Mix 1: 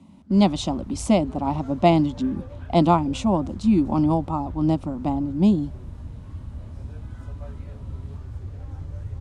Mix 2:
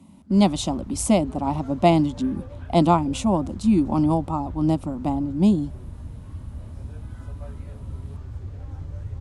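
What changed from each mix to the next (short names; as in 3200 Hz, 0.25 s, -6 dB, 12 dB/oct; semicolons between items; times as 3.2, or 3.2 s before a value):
speech: remove LPF 6200 Hz 12 dB/oct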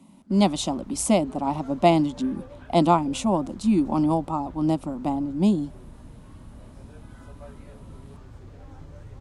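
master: add bell 78 Hz -14.5 dB 1.3 oct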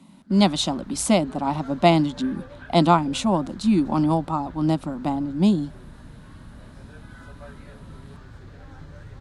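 master: add fifteen-band EQ 160 Hz +4 dB, 1600 Hz +10 dB, 4000 Hz +7 dB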